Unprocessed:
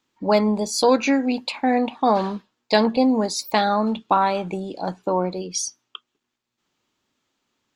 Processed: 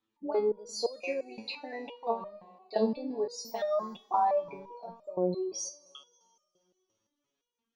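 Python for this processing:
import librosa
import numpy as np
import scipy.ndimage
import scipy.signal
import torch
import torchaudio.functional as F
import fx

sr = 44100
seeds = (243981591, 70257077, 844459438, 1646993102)

y = fx.envelope_sharpen(x, sr, power=2.0)
y = fx.rev_fdn(y, sr, rt60_s=2.8, lf_ratio=1.0, hf_ratio=1.0, size_ms=98.0, drr_db=16.5)
y = fx.resonator_held(y, sr, hz=5.8, low_hz=110.0, high_hz=610.0)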